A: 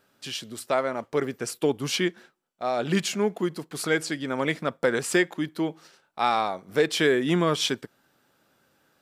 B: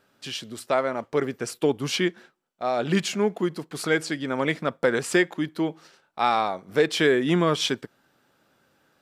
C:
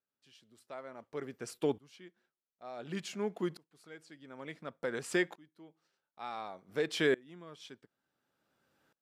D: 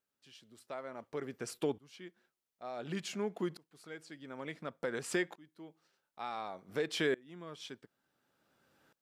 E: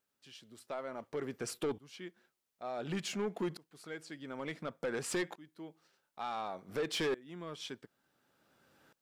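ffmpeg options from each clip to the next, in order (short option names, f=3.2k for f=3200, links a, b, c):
-af "highshelf=f=7.2k:g=-6,volume=1.5dB"
-af "aeval=exprs='val(0)*pow(10,-26*if(lt(mod(-0.56*n/s,1),2*abs(-0.56)/1000),1-mod(-0.56*n/s,1)/(2*abs(-0.56)/1000),(mod(-0.56*n/s,1)-2*abs(-0.56)/1000)/(1-2*abs(-0.56)/1000))/20)':c=same,volume=-7.5dB"
-af "acompressor=threshold=-45dB:ratio=1.5,volume=4dB"
-af "asoftclip=type=tanh:threshold=-32.5dB,volume=3.5dB"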